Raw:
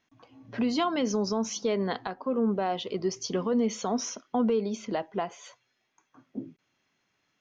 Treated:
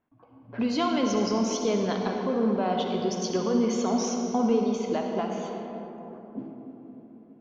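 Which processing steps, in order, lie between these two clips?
notch 1900 Hz, Q 17; on a send at -1.5 dB: reverb RT60 3.8 s, pre-delay 45 ms; on the sum: low-pass opened by the level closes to 1100 Hz, open at -24.5 dBFS

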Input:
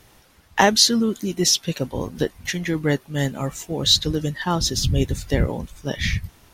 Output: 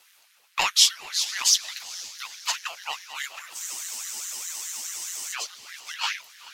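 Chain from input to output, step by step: reverse delay 0.504 s, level -9 dB; steep high-pass 1500 Hz 36 dB/oct; frequency shift +27 Hz; diffused feedback echo 0.468 s, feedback 50%, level -16 dB; spectral freeze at 3.6, 1.74 s; ring modulator with a swept carrier 550 Hz, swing 85%, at 4.8 Hz; gain +1.5 dB

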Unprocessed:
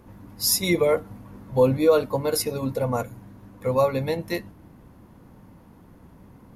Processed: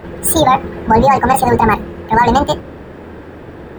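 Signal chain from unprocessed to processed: octaver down 2 oct, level -2 dB; high shelf 2200 Hz -11 dB; notch 3500 Hz, Q 18; speed mistake 45 rpm record played at 78 rpm; low shelf 210 Hz -7 dB; maximiser +19.5 dB; attack slew limiter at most 400 dB/s; gain -1 dB

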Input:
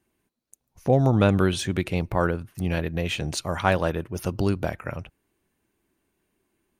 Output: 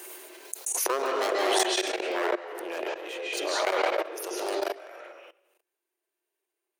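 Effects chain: one-sided fold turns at -21 dBFS; 1.86–3.99 high shelf 2900 Hz -10.5 dB; reverb RT60 0.70 s, pre-delay 0.128 s, DRR -3 dB; level quantiser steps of 21 dB; Chebyshev high-pass 360 Hz, order 5; high shelf 6500 Hz +10 dB; backwards sustainer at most 21 dB/s

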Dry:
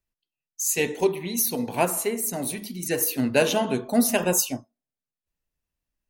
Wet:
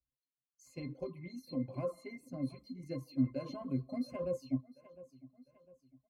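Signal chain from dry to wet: bell 2100 Hz -4 dB 2.5 oct; feedback echo 0.703 s, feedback 39%, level -21 dB; limiter -16.5 dBFS, peak gain reduction 8.5 dB; hard clip -18.5 dBFS, distortion -28 dB; octave resonator C, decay 0.15 s; reverb removal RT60 0.56 s; gain +2 dB

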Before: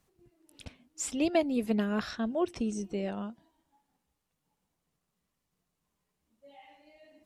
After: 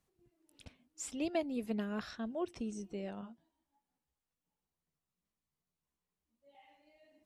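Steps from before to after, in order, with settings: 3.21–6.55 chorus voices 2, 1.2 Hz, delay 15 ms, depth 3 ms; gain -8 dB

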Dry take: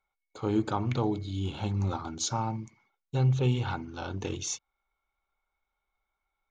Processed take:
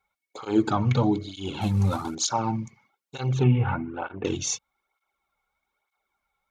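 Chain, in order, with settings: 1.61–2.15 CVSD 64 kbps; 3.43–4.25 steep low-pass 2500 Hz 36 dB/oct; tape flanging out of phase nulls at 1.1 Hz, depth 3.4 ms; gain +8.5 dB

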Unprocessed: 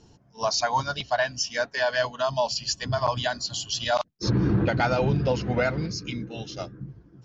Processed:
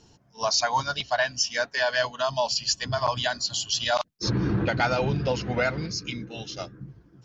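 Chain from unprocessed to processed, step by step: tilt shelf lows -3 dB

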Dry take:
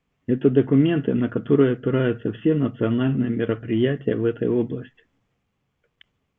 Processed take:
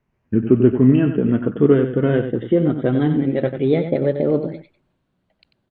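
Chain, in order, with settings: speed glide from 86% -> 138%; high shelf 2000 Hz -9.5 dB; on a send: echo 93 ms -9 dB; on the sum: gain +3.5 dB

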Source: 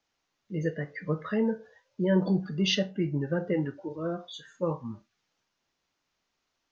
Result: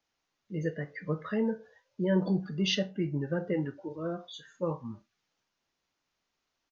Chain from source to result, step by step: downsampling 16000 Hz; gain -2.5 dB

